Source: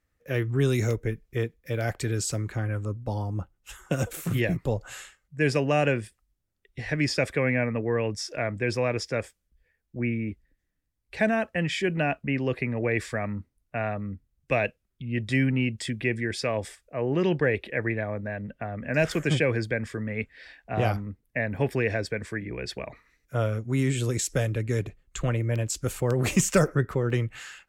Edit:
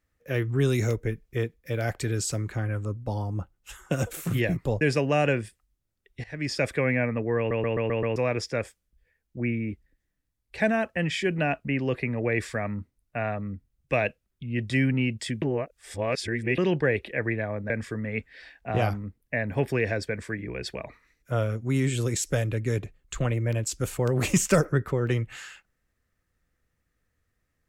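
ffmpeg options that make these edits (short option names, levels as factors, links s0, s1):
-filter_complex "[0:a]asplit=12[s0][s1][s2][s3][s4][s5][s6][s7][s8][s9][s10][s11];[s0]atrim=end=4.812[s12];[s1]atrim=start=5.398:end=6.83,asetpts=PTS-STARTPTS,afade=t=out:st=1.428:d=0.004:c=hsin:silence=0.141254[s13];[s2]atrim=start=6.83:end=8.102,asetpts=PTS-STARTPTS,afade=t=in:d=0.42:silence=0.141254[s14];[s3]atrim=start=7.968:end=8.102[s15];[s4]atrim=start=7.968:end=8.102[s16];[s5]atrim=start=7.968:end=8.102[s17];[s6]atrim=start=7.968:end=8.102[s18];[s7]atrim=start=7.968:end=8.102[s19];[s8]atrim=start=8.748:end=16.012[s20];[s9]atrim=start=16.008:end=17.172,asetpts=PTS-STARTPTS,areverse[s21];[s10]atrim=start=17.168:end=18.292[s22];[s11]atrim=start=19.728[s23];[s13][s14]concat=n=2:v=0:a=1[s24];[s12][s24]acrossfade=d=0.004:c1=hsin:c2=hsin[s25];[s25][s15]acrossfade=d=0.004:c1=hsin:c2=hsin[s26];[s26][s16]acrossfade=d=0.004:c1=hsin:c2=hsin[s27];[s27][s17]acrossfade=d=0.004:c1=hsin:c2=hsin[s28];[s28][s18]acrossfade=d=0.004:c1=hsin:c2=hsin[s29];[s29][s19]acrossfade=d=0.004:c1=hsin:c2=hsin[s30];[s30][s20]acrossfade=d=0.004:c1=hsin:c2=hsin[s31];[s31][s21]acrossfade=d=0.004:c1=hsin:c2=hsin[s32];[s32][s22]acrossfade=d=0.004:c1=hsin:c2=hsin[s33];[s33][s23]acrossfade=d=0.004:c1=hsin:c2=hsin"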